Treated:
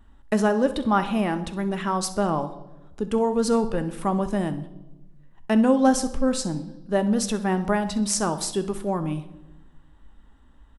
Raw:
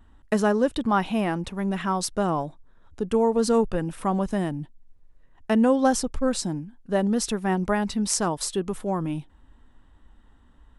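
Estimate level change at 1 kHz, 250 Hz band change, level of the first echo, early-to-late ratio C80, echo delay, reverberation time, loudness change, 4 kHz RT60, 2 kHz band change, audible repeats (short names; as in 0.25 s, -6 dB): +1.0 dB, +1.5 dB, -16.0 dB, 16.5 dB, 64 ms, 1.1 s, +0.5 dB, 0.90 s, +0.5 dB, 2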